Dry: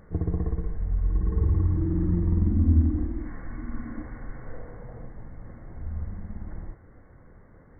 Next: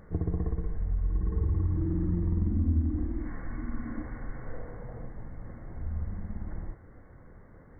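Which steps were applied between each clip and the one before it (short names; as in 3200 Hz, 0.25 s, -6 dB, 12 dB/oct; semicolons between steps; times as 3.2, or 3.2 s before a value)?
compressor 2:1, threshold -27 dBFS, peak gain reduction 7.5 dB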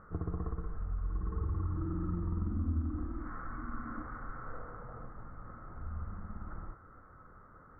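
synth low-pass 1300 Hz, resonance Q 14; gain -7 dB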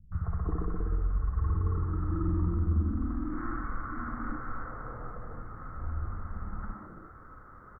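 three bands offset in time lows, highs, mids 0.12/0.34 s, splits 160/610 Hz; gain +6.5 dB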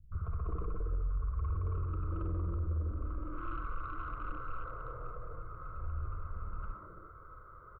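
soft clip -26.5 dBFS, distortion -13 dB; fixed phaser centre 1200 Hz, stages 8; gain -1 dB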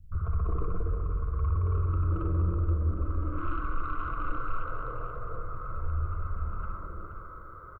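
echo 0.477 s -8.5 dB; on a send at -9.5 dB: reverb RT60 1.8 s, pre-delay 3 ms; on the sum: gain +6 dB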